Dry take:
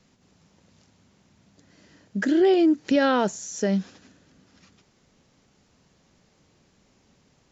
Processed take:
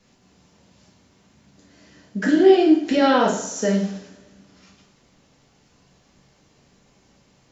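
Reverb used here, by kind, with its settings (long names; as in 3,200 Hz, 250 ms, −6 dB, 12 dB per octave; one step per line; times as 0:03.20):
coupled-rooms reverb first 0.59 s, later 1.6 s, from −18 dB, DRR −4.5 dB
level −1 dB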